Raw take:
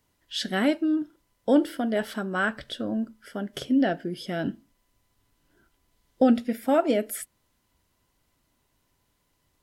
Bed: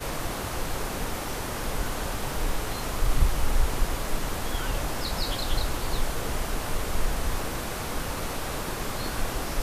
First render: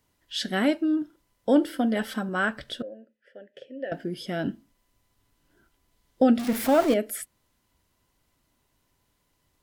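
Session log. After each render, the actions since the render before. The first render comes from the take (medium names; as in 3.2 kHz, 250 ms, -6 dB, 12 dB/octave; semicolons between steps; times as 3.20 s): 1.73–2.29 s: comb 3.9 ms, depth 58%; 2.82–3.92 s: vowel filter e; 6.39–6.94 s: jump at every zero crossing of -27.5 dBFS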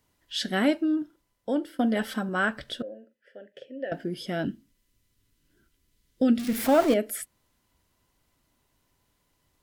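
0.75–1.79 s: fade out, to -11.5 dB; 2.84–3.52 s: doubling 43 ms -13 dB; 4.45–6.58 s: peaking EQ 830 Hz -14.5 dB 1.2 oct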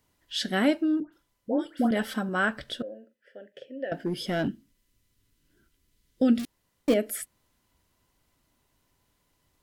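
1.00–1.91 s: phase dispersion highs, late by 125 ms, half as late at 1.4 kHz; 4.06–4.48 s: waveshaping leveller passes 1; 6.45–6.88 s: room tone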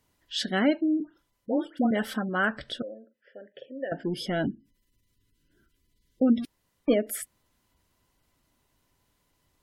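spectral gate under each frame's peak -30 dB strong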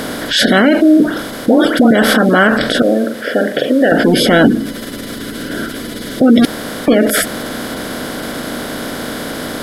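spectral levelling over time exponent 0.4; loudness maximiser +15 dB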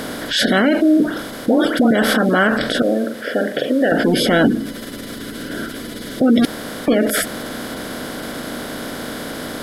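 trim -5 dB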